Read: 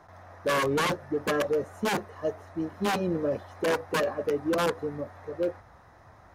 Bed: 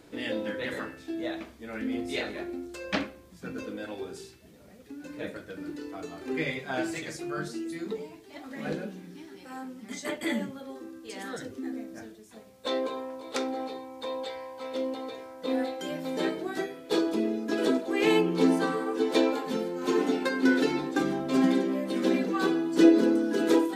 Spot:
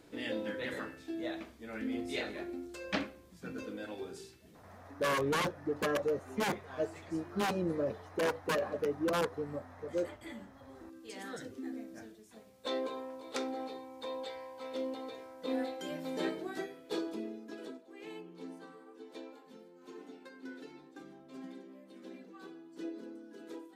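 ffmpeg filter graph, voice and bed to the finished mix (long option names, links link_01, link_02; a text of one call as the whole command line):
ffmpeg -i stem1.wav -i stem2.wav -filter_complex "[0:a]adelay=4550,volume=-5.5dB[link_01];[1:a]volume=6dB,afade=type=out:start_time=4.54:duration=0.58:silence=0.251189,afade=type=in:start_time=10.56:duration=0.5:silence=0.281838,afade=type=out:start_time=16.32:duration=1.47:silence=0.125893[link_02];[link_01][link_02]amix=inputs=2:normalize=0" out.wav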